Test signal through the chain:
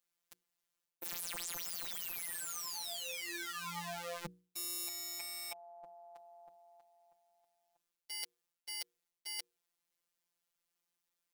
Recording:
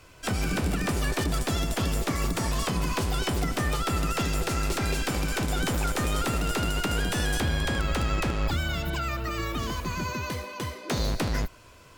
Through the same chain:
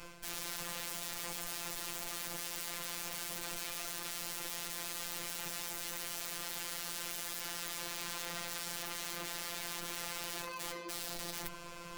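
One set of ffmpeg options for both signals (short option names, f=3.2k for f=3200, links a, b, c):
-af "aeval=exprs='(mod(35.5*val(0)+1,2)-1)/35.5':c=same,areverse,acompressor=threshold=-48dB:ratio=4,areverse,afftfilt=real='hypot(re,im)*cos(PI*b)':imag='0':win_size=1024:overlap=0.75,bandreject=f=60:t=h:w=6,bandreject=f=120:t=h:w=6,bandreject=f=180:t=h:w=6,bandreject=f=240:t=h:w=6,bandreject=f=300:t=h:w=6,bandreject=f=360:t=h:w=6,bandreject=f=420:t=h:w=6,bandreject=f=480:t=h:w=6,volume=9dB"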